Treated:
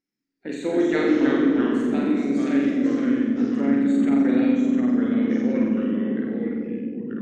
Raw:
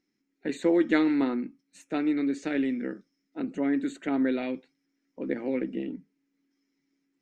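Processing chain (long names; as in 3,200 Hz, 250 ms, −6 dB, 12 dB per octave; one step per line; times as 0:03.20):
flutter between parallel walls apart 7.4 metres, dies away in 1.1 s
noise reduction from a noise print of the clip's start 8 dB
bucket-brigade delay 269 ms, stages 1,024, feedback 69%, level −3.5 dB
delay with pitch and tempo change per echo 208 ms, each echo −2 semitones, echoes 2
level −2 dB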